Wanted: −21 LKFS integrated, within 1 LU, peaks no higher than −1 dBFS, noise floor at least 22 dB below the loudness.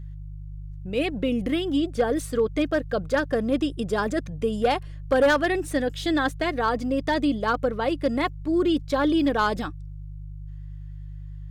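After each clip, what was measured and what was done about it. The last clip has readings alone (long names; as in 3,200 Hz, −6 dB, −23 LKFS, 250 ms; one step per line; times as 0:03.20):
share of clipped samples 0.5%; peaks flattened at −14.0 dBFS; mains hum 50 Hz; hum harmonics up to 150 Hz; level of the hum −35 dBFS; integrated loudness −24.5 LKFS; sample peak −14.0 dBFS; target loudness −21.0 LKFS
→ clipped peaks rebuilt −14 dBFS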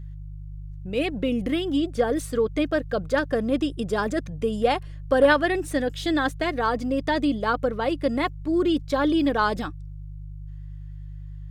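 share of clipped samples 0.0%; mains hum 50 Hz; hum harmonics up to 150 Hz; level of the hum −34 dBFS
→ hum removal 50 Hz, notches 3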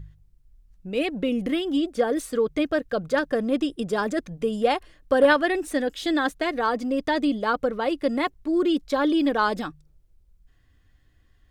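mains hum none found; integrated loudness −24.5 LKFS; sample peak −5.5 dBFS; target loudness −21.0 LKFS
→ level +3.5 dB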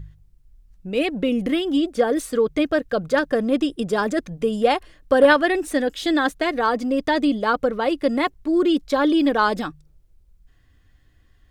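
integrated loudness −21.0 LKFS; sample peak −2.0 dBFS; background noise floor −57 dBFS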